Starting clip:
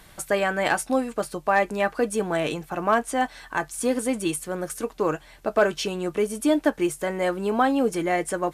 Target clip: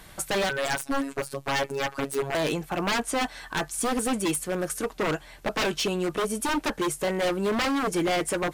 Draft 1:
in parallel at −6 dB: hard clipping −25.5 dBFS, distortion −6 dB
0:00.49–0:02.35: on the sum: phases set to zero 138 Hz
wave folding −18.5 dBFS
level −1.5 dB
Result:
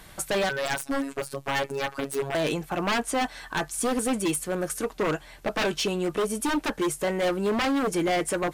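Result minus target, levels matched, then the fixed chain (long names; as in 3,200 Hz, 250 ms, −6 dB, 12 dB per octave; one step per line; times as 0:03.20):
hard clipping: distortion +13 dB
in parallel at −6 dB: hard clipping −14.5 dBFS, distortion −19 dB
0:00.49–0:02.35: on the sum: phases set to zero 138 Hz
wave folding −18.5 dBFS
level −1.5 dB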